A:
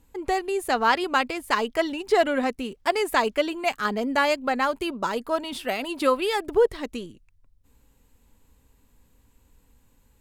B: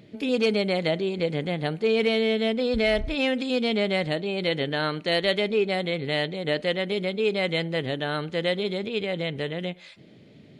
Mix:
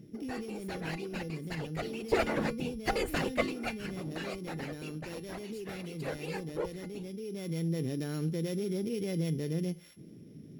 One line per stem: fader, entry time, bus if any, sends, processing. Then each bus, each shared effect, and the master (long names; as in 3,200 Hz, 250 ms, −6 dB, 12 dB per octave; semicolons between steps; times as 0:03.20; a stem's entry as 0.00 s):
0:01.42 −10 dB → 0:02.20 −0.5 dB → 0:03.46 −0.5 dB → 0:03.96 −9.5 dB, 0.00 s, no send, lower of the sound and its delayed copy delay 0.44 ms; random phases in short frames
−4.5 dB, 0.00 s, no send, samples sorted by size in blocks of 8 samples; low shelf with overshoot 480 Hz +11 dB, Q 1.5; brickwall limiter −14.5 dBFS, peak gain reduction 10 dB; automatic ducking −8 dB, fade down 0.30 s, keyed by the first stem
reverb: not used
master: tuned comb filter 160 Hz, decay 0.27 s, harmonics odd, mix 60%